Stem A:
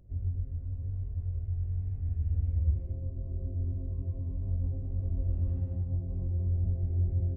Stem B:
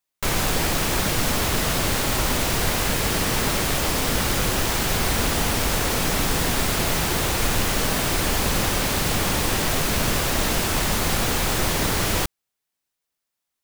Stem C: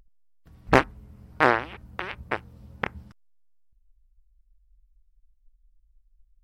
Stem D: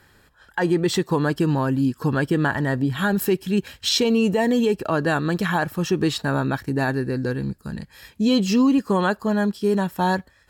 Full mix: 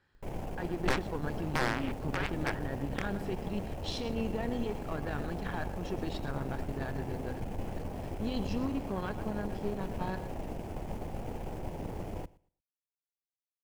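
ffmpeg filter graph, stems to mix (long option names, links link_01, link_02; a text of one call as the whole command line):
ffmpeg -i stem1.wav -i stem2.wav -i stem3.wav -i stem4.wav -filter_complex "[0:a]adelay=1500,volume=-14dB[link_01];[1:a]afwtdn=0.0398,firequalizer=gain_entry='entry(820,0);entry(1200,-16);entry(4900,-5)':delay=0.05:min_phase=1,volume=-10.5dB,asplit=2[link_02][link_03];[link_03]volume=-22.5dB[link_04];[2:a]alimiter=limit=-9.5dB:level=0:latency=1:release=156,adelay=150,volume=1.5dB[link_05];[3:a]lowpass=4800,volume=-14dB,asplit=2[link_06][link_07];[link_07]volume=-12.5dB[link_08];[link_04][link_08]amix=inputs=2:normalize=0,aecho=0:1:115|230|345:1|0.2|0.04[link_09];[link_01][link_02][link_05][link_06][link_09]amix=inputs=5:normalize=0,aeval=exprs='(tanh(14.1*val(0)+0.65)-tanh(0.65))/14.1':channel_layout=same" out.wav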